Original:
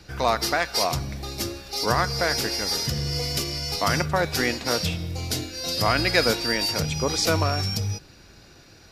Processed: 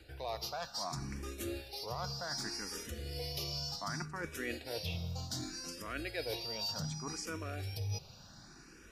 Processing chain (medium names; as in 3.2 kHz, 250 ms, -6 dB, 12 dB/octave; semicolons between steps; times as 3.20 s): band-stop 2.1 kHz, Q 16; reverse; compression 6:1, threshold -32 dBFS, peak gain reduction 16 dB; reverse; barber-pole phaser +0.66 Hz; trim -2.5 dB